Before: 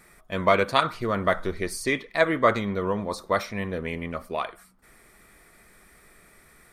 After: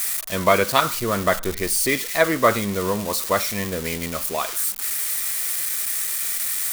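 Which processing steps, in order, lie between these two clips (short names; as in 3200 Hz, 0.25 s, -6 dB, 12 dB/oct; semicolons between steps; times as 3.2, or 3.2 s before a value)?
switching spikes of -20.5 dBFS; gain +3 dB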